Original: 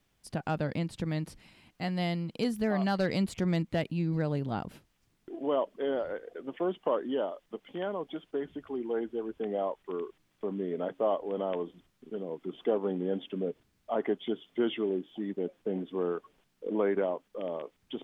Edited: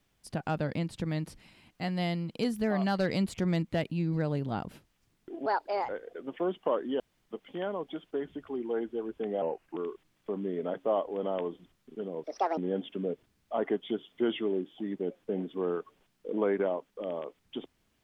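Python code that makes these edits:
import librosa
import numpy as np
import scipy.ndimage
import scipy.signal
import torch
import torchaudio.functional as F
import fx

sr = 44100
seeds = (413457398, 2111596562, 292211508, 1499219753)

y = fx.edit(x, sr, fx.speed_span(start_s=5.46, length_s=0.63, speed=1.47),
    fx.room_tone_fill(start_s=7.2, length_s=0.26),
    fx.speed_span(start_s=9.62, length_s=0.29, speed=0.84),
    fx.speed_span(start_s=12.38, length_s=0.57, speed=1.67), tone=tone)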